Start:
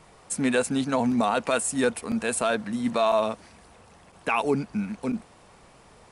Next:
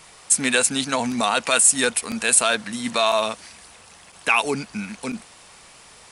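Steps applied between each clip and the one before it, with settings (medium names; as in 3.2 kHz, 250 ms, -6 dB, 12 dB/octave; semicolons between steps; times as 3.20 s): tilt shelf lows -8.5 dB, about 1.4 kHz; trim +6 dB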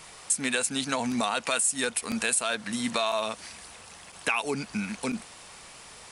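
compression 3:1, threshold -26 dBFS, peak gain reduction 11.5 dB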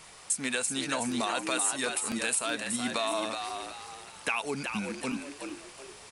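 frequency-shifting echo 374 ms, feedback 36%, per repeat +72 Hz, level -6 dB; trim -3.5 dB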